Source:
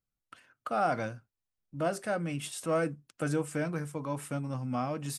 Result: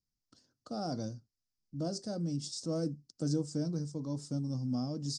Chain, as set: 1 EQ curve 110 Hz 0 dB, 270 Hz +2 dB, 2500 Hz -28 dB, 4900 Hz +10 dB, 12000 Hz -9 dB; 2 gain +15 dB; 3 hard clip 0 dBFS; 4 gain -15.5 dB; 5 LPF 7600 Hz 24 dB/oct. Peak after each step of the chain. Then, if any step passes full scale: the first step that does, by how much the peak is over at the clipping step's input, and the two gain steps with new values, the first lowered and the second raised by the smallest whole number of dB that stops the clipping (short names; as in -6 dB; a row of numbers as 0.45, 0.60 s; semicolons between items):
-20.5, -5.5, -5.5, -21.0, -21.0 dBFS; no overload